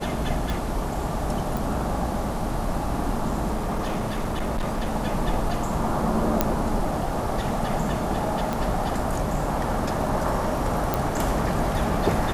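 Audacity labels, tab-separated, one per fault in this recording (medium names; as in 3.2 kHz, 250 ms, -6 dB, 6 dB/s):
0.500000	0.500000	pop
1.570000	1.570000	pop
3.550000	4.880000	clipped -22 dBFS
6.410000	6.410000	pop -4 dBFS
8.530000	8.530000	pop
10.940000	10.940000	pop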